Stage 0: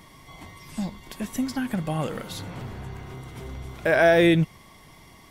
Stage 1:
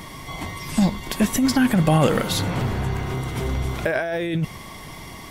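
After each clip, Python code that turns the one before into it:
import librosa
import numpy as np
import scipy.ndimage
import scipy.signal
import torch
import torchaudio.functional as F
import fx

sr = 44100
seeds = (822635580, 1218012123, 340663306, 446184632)

y = fx.over_compress(x, sr, threshold_db=-27.0, ratio=-1.0)
y = y * librosa.db_to_amplitude(8.0)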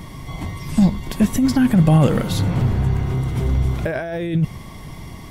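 y = fx.curve_eq(x, sr, hz=(130.0, 390.0, 1600.0), db=(0, -7, -11))
y = y * librosa.db_to_amplitude(7.0)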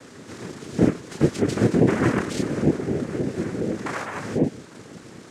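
y = fx.chorus_voices(x, sr, voices=6, hz=0.87, base_ms=28, depth_ms=4.8, mix_pct=40)
y = fx.noise_vocoder(y, sr, seeds[0], bands=3)
y = y * librosa.db_to_amplitude(-2.5)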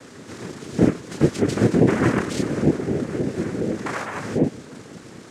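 y = x + 10.0 ** (-24.0 / 20.0) * np.pad(x, (int(302 * sr / 1000.0), 0))[:len(x)]
y = y * librosa.db_to_amplitude(1.5)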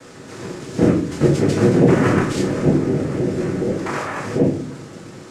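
y = fx.room_shoebox(x, sr, seeds[1], volume_m3=58.0, walls='mixed', distance_m=0.69)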